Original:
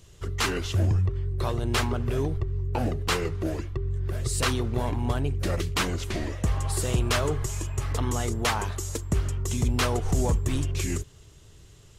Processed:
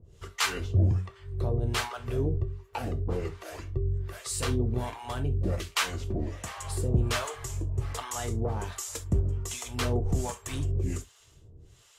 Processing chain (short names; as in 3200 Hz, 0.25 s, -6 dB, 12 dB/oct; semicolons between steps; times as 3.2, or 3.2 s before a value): harmonic tremolo 1.3 Hz, depth 100%, crossover 650 Hz; non-linear reverb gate 90 ms falling, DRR 6.5 dB